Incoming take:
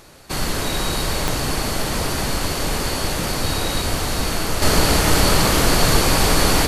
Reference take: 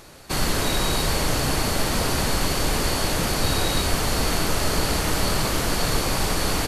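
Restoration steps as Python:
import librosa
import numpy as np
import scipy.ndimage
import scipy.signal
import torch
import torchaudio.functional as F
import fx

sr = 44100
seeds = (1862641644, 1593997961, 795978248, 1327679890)

y = fx.fix_declick_ar(x, sr, threshold=10.0)
y = fx.fix_echo_inverse(y, sr, delay_ms=440, level_db=-9.0)
y = fx.fix_level(y, sr, at_s=4.62, step_db=-6.5)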